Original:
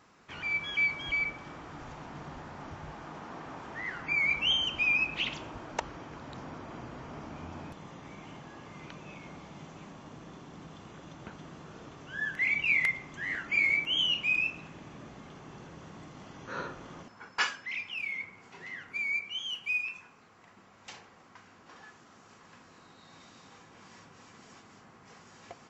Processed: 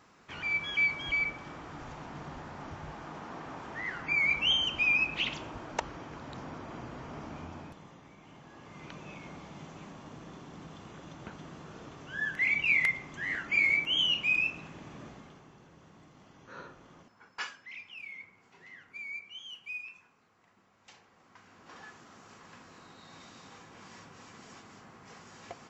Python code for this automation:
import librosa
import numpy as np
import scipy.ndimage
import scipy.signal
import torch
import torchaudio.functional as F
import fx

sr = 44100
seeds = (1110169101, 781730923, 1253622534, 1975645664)

y = fx.gain(x, sr, db=fx.line((7.35, 0.5), (8.17, -8.5), (8.95, 0.5), (15.07, 0.5), (15.55, -9.0), (20.96, -9.0), (21.77, 2.5)))